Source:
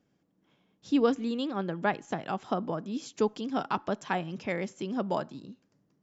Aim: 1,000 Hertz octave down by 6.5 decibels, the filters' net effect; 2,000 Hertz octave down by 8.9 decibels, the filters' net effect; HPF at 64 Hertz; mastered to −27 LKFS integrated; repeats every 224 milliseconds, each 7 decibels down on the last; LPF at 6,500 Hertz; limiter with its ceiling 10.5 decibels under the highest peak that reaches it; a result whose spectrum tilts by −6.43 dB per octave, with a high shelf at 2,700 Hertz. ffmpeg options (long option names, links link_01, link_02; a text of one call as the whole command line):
ffmpeg -i in.wav -af "highpass=64,lowpass=6500,equalizer=frequency=1000:width_type=o:gain=-7,equalizer=frequency=2000:width_type=o:gain=-7.5,highshelf=frequency=2700:gain=-3.5,alimiter=level_in=2.5dB:limit=-24dB:level=0:latency=1,volume=-2.5dB,aecho=1:1:224|448|672|896|1120:0.447|0.201|0.0905|0.0407|0.0183,volume=9.5dB" out.wav